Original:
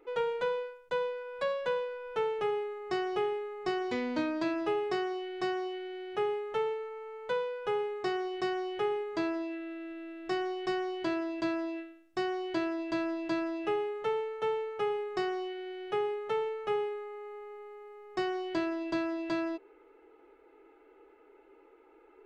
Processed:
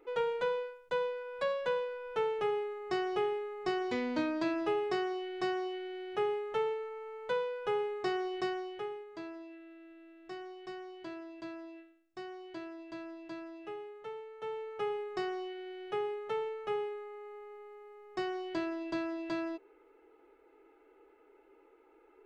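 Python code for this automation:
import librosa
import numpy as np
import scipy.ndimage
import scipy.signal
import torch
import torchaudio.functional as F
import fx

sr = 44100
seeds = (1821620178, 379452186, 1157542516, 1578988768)

y = fx.gain(x, sr, db=fx.line((8.39, -1.0), (9.06, -12.0), (14.24, -12.0), (14.8, -3.5)))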